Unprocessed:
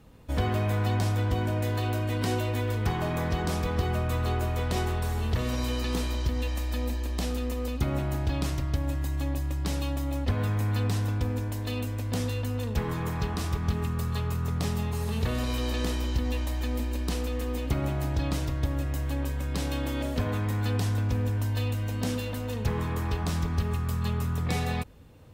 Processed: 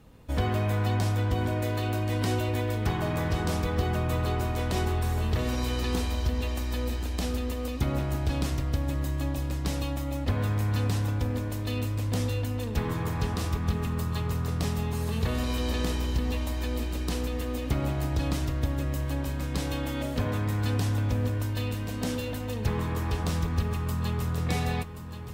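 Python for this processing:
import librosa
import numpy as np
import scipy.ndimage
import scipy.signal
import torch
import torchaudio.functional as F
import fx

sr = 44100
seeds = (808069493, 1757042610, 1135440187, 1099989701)

y = fx.echo_feedback(x, sr, ms=1079, feedback_pct=52, wet_db=-11)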